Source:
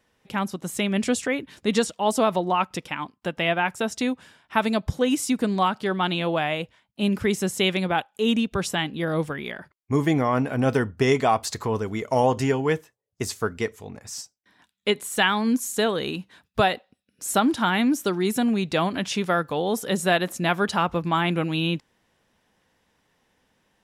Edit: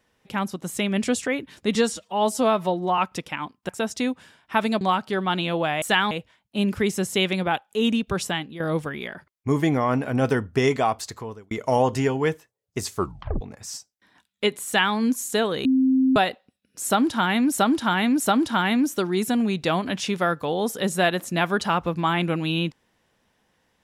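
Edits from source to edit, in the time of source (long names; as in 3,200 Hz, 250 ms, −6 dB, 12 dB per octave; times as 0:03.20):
0:01.75–0:02.57: time-stretch 1.5×
0:03.28–0:03.70: remove
0:04.82–0:05.54: remove
0:08.72–0:09.04: fade out linear, to −11.5 dB
0:10.88–0:11.95: fade out equal-power
0:13.40: tape stop 0.45 s
0:15.10–0:15.39: duplicate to 0:06.55
0:16.09–0:16.60: beep over 262 Hz −15.5 dBFS
0:17.28–0:17.96: repeat, 3 plays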